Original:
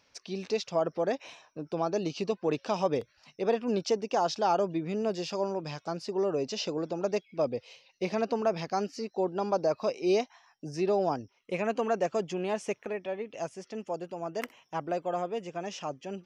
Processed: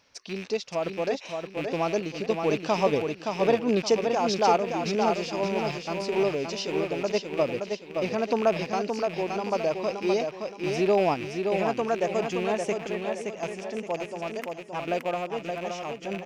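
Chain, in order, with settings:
loose part that buzzes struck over −44 dBFS, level −30 dBFS
sample-and-hold tremolo
repeating echo 571 ms, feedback 37%, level −5 dB
level +5 dB

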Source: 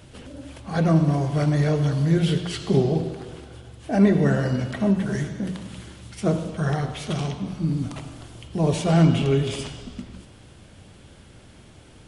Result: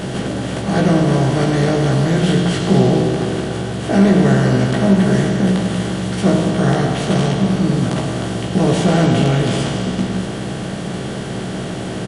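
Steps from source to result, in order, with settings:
compressor on every frequency bin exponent 0.4
double-tracking delay 16 ms −3.5 dB

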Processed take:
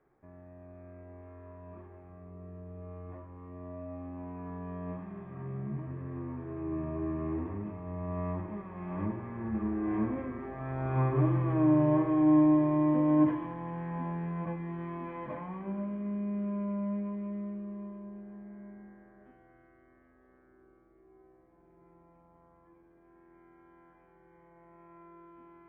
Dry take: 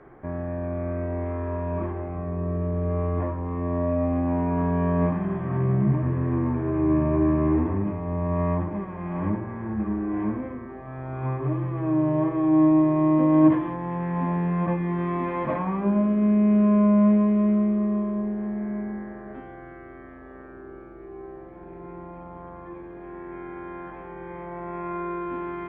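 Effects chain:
source passing by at 0:11.10, 9 m/s, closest 8.4 metres
delay with a high-pass on its return 227 ms, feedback 65%, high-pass 1,600 Hz, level −9 dB

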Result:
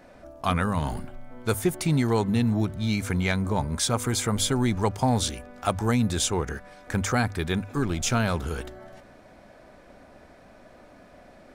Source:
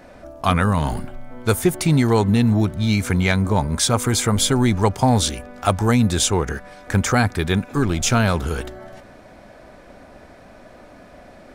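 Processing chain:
mains-hum notches 50/100 Hz
level −6.5 dB

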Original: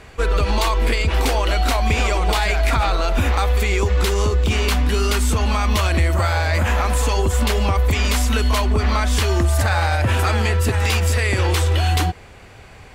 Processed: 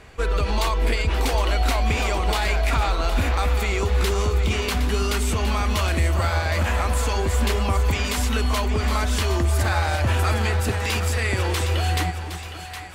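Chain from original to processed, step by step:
echo with a time of its own for lows and highs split 710 Hz, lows 270 ms, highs 764 ms, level −9.5 dB
0:09.56–0:11.67: floating-point word with a short mantissa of 8 bits
level −4 dB

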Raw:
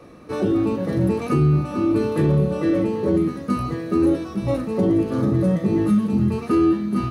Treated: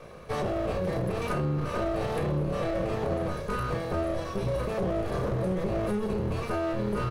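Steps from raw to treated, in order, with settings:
lower of the sound and its delayed copy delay 1.8 ms
double-tracking delay 33 ms −7 dB
brickwall limiter −21.5 dBFS, peak gain reduction 12 dB

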